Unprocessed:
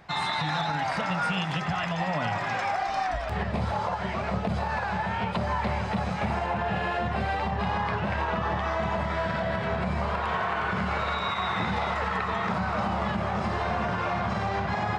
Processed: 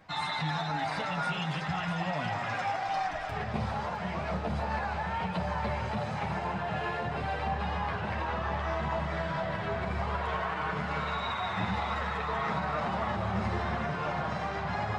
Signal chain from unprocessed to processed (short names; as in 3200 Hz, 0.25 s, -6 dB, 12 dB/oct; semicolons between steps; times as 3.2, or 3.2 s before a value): chorus voices 4, 0.29 Hz, delay 10 ms, depth 3.7 ms; split-band echo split 830 Hz, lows 0.18 s, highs 0.66 s, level -9 dB; gain -2 dB